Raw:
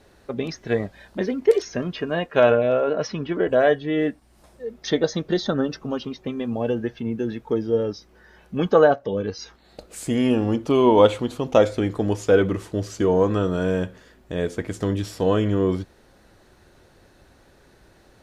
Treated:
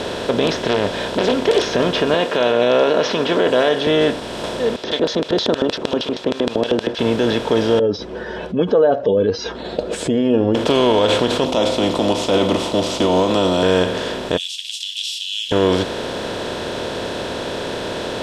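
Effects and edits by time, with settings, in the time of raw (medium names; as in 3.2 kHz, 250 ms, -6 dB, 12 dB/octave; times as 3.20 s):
0.60–1.32 s: loudspeaker Doppler distortion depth 0.47 ms
2.14–3.87 s: Bessel high-pass 330 Hz
4.76–6.99 s: LFO band-pass square 6.4 Hz 320–4300 Hz
7.79–10.55 s: spectral contrast enhancement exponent 2.2
11.45–13.63 s: static phaser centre 440 Hz, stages 6
14.37–15.52 s: Chebyshev high-pass 2.7 kHz, order 10
whole clip: spectral levelling over time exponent 0.4; peaking EQ 3.4 kHz +10 dB 0.85 oct; peak limiter -5.5 dBFS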